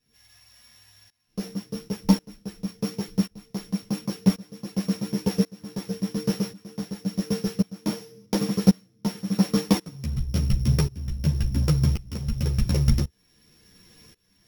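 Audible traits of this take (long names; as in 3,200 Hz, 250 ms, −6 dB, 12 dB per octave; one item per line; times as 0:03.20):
a buzz of ramps at a fixed pitch in blocks of 8 samples
tremolo saw up 0.92 Hz, depth 95%
a shimmering, thickened sound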